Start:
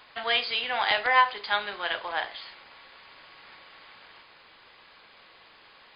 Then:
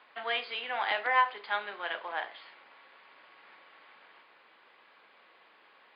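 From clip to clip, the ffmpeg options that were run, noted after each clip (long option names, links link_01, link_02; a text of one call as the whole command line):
ffmpeg -i in.wav -filter_complex "[0:a]highpass=83,acrossover=split=200 3300:gain=0.0891 1 0.0794[link_01][link_02][link_03];[link_01][link_02][link_03]amix=inputs=3:normalize=0,volume=-4.5dB" out.wav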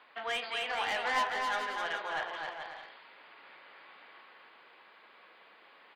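ffmpeg -i in.wav -filter_complex "[0:a]asoftclip=type=tanh:threshold=-27dB,asplit=2[link_01][link_02];[link_02]aecho=0:1:260|429|538.8|610.3|656.7:0.631|0.398|0.251|0.158|0.1[link_03];[link_01][link_03]amix=inputs=2:normalize=0" out.wav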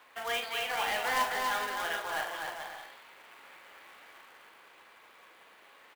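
ffmpeg -i in.wav -filter_complex "[0:a]acrossover=split=270[link_01][link_02];[link_02]acrusher=bits=2:mode=log:mix=0:aa=0.000001[link_03];[link_01][link_03]amix=inputs=2:normalize=0,asplit=2[link_04][link_05];[link_05]adelay=43,volume=-8dB[link_06];[link_04][link_06]amix=inputs=2:normalize=0" out.wav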